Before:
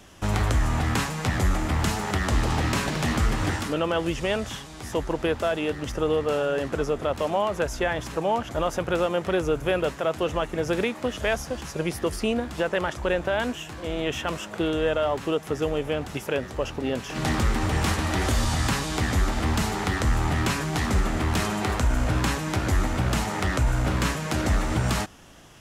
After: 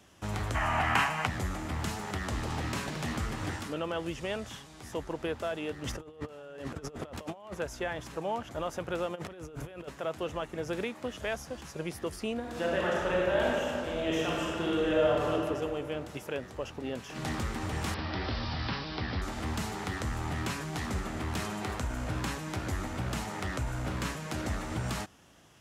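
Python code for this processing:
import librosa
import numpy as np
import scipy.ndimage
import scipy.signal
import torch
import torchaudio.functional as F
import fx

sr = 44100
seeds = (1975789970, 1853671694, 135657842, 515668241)

y = fx.spec_box(x, sr, start_s=0.55, length_s=0.71, low_hz=600.0, high_hz=3200.0, gain_db=12)
y = fx.over_compress(y, sr, threshold_db=-31.0, ratio=-0.5, at=(5.82, 7.53), fade=0.02)
y = fx.over_compress(y, sr, threshold_db=-34.0, ratio=-1.0, at=(9.14, 9.87), fade=0.02)
y = fx.reverb_throw(y, sr, start_s=12.4, length_s=2.92, rt60_s=2.3, drr_db=-5.0)
y = fx.resample_bad(y, sr, factor=4, down='none', up='filtered', at=(17.94, 19.22))
y = scipy.signal.sosfilt(scipy.signal.butter(2, 60.0, 'highpass', fs=sr, output='sos'), y)
y = y * 10.0 ** (-9.0 / 20.0)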